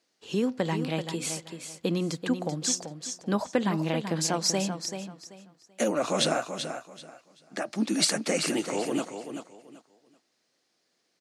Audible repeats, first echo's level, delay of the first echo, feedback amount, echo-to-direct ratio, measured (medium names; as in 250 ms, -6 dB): 3, -8.5 dB, 385 ms, 24%, -8.0 dB